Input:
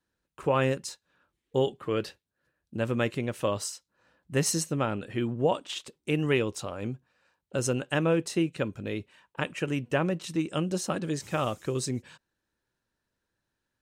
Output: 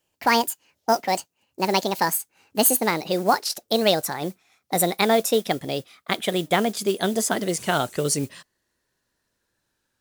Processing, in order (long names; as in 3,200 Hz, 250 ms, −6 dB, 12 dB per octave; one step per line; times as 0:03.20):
gliding playback speed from 179% → 97%
noise that follows the level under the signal 25 dB
bass and treble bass −3 dB, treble +5 dB
level +6.5 dB